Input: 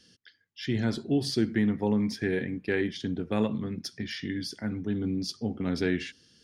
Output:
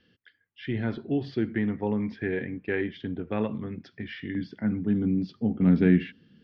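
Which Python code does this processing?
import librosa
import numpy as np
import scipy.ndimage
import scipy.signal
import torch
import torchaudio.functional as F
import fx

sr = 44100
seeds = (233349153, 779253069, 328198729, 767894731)

y = fx.peak_eq(x, sr, hz=190.0, db=fx.steps((0.0, -2.5), (4.35, 7.0), (5.62, 13.5)), octaves=1.1)
y = scipy.signal.sosfilt(scipy.signal.butter(4, 2900.0, 'lowpass', fs=sr, output='sos'), y)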